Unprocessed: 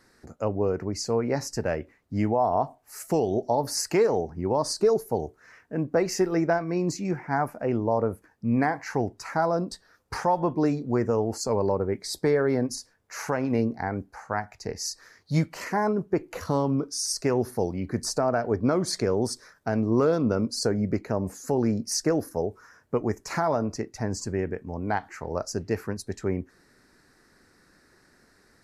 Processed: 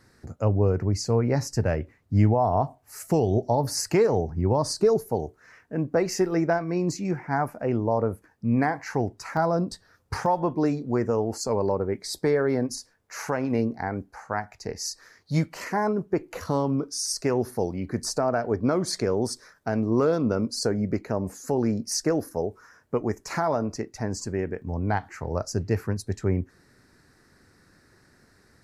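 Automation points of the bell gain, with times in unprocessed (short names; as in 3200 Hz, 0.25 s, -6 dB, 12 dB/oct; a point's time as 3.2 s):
bell 100 Hz 1.4 oct
+11.5 dB
from 5.09 s +3 dB
from 9.37 s +10 dB
from 10.26 s -0.5 dB
from 24.62 s +8.5 dB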